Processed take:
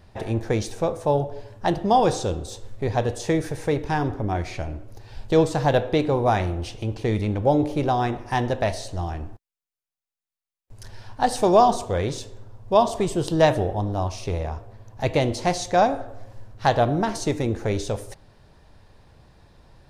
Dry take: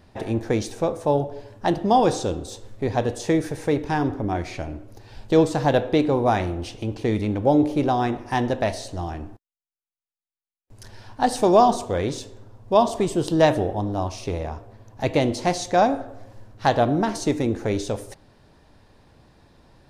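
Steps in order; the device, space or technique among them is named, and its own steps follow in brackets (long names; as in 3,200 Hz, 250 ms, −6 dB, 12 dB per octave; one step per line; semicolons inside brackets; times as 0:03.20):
low shelf boost with a cut just above (low-shelf EQ 100 Hz +5.5 dB; parametric band 270 Hz −5.5 dB 0.67 octaves)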